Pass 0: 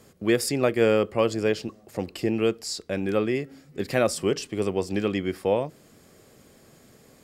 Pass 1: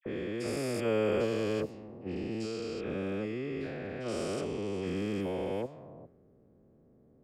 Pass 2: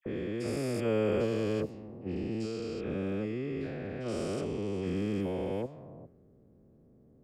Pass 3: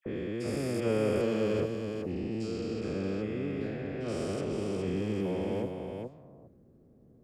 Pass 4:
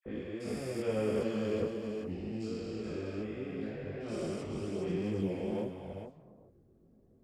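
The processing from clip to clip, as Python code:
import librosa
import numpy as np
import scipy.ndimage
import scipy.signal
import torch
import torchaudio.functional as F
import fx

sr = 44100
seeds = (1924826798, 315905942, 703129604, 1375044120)

y1 = fx.spec_steps(x, sr, hold_ms=400)
y1 = fx.dispersion(y1, sr, late='lows', ms=60.0, hz=1600.0)
y1 = fx.env_lowpass(y1, sr, base_hz=440.0, full_db=-24.5)
y1 = y1 * librosa.db_to_amplitude(-4.5)
y2 = fx.low_shelf(y1, sr, hz=340.0, db=6.5)
y2 = y2 * librosa.db_to_amplitude(-2.5)
y3 = y2 + 10.0 ** (-5.0 / 20.0) * np.pad(y2, (int(414 * sr / 1000.0), 0))[:len(y2)]
y4 = fx.chorus_voices(y3, sr, voices=4, hz=0.74, base_ms=21, depth_ms=2.9, mix_pct=55)
y4 = y4 * librosa.db_to_amplitude(-1.5)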